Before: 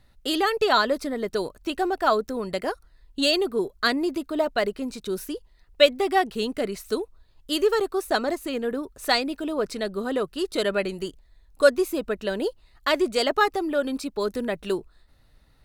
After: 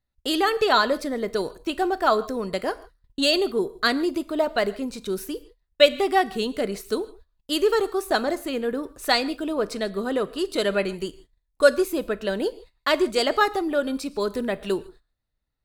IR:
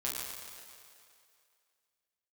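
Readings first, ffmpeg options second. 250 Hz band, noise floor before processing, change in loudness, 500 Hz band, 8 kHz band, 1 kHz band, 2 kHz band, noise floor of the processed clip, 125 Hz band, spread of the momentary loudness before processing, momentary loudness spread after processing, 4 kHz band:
+1.0 dB, −59 dBFS, +1.0 dB, +1.0 dB, +1.0 dB, +1.0 dB, +1.0 dB, −77 dBFS, can't be measured, 10 LU, 10 LU, +1.0 dB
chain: -filter_complex "[0:a]agate=range=-24dB:threshold=-48dB:ratio=16:detection=peak,asplit=2[link_01][link_02];[1:a]atrim=start_sample=2205,afade=type=out:start_time=0.21:duration=0.01,atrim=end_sample=9702[link_03];[link_02][link_03]afir=irnorm=-1:irlink=0,volume=-15.5dB[link_04];[link_01][link_04]amix=inputs=2:normalize=0"

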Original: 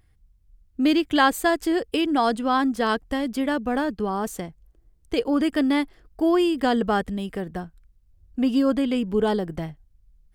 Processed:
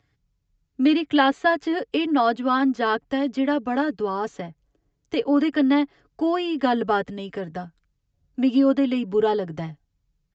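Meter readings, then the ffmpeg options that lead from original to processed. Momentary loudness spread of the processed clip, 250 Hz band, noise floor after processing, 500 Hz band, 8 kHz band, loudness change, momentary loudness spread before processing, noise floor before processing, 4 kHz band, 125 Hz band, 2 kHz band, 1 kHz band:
13 LU, +1.0 dB, −74 dBFS, +1.0 dB, below −10 dB, +1.0 dB, 13 LU, −61 dBFS, −1.0 dB, −2.5 dB, +0.5 dB, +0.5 dB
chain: -filter_complex "[0:a]highpass=65,lowshelf=frequency=120:gain=-6,aecho=1:1:7.1:0.56,acrossover=split=340|530|4000[link_01][link_02][link_03][link_04];[link_04]acompressor=threshold=-52dB:ratio=5[link_05];[link_01][link_02][link_03][link_05]amix=inputs=4:normalize=0,aresample=16000,aresample=44100"

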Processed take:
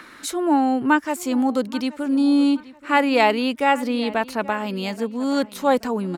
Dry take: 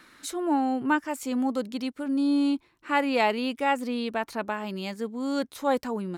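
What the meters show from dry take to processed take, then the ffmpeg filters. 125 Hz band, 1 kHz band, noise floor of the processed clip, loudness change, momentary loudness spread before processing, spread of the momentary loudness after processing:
can't be measured, +6.5 dB, −45 dBFS, +6.5 dB, 8 LU, 8 LU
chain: -filter_complex "[0:a]acrossover=split=190|2600[link_01][link_02][link_03];[link_02]acompressor=mode=upward:threshold=-45dB:ratio=2.5[link_04];[link_01][link_04][link_03]amix=inputs=3:normalize=0,asplit=2[link_05][link_06];[link_06]adelay=828,lowpass=frequency=4300:poles=1,volume=-18.5dB,asplit=2[link_07][link_08];[link_08]adelay=828,lowpass=frequency=4300:poles=1,volume=0.36,asplit=2[link_09][link_10];[link_10]adelay=828,lowpass=frequency=4300:poles=1,volume=0.36[link_11];[link_05][link_07][link_09][link_11]amix=inputs=4:normalize=0,volume=6.5dB"

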